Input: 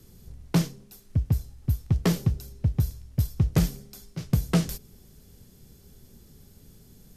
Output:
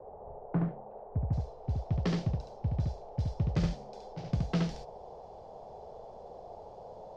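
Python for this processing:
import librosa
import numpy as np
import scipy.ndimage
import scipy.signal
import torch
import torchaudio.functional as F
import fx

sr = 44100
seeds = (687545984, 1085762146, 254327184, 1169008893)

y = fx.dmg_noise_band(x, sr, seeds[0], low_hz=400.0, high_hz=840.0, level_db=-41.0)
y = fx.lowpass(y, sr, hz=fx.steps((0.0, 1600.0), (1.33, 5300.0)), slope=24)
y = y + 10.0 ** (-3.0 / 20.0) * np.pad(y, (int(71 * sr / 1000.0), 0))[:len(y)]
y = y * librosa.db_to_amplitude(-8.5)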